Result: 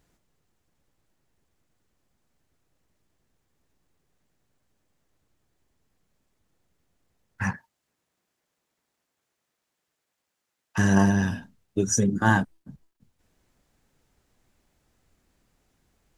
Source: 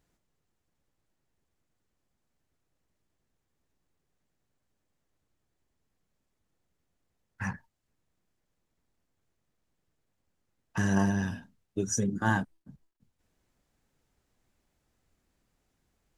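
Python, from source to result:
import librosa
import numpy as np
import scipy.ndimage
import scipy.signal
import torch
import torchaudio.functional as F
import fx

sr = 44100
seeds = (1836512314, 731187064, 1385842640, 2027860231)

y = fx.highpass(x, sr, hz=fx.line((7.5, 330.0), (10.77, 1300.0)), slope=6, at=(7.5, 10.77), fade=0.02)
y = F.gain(torch.from_numpy(y), 6.5).numpy()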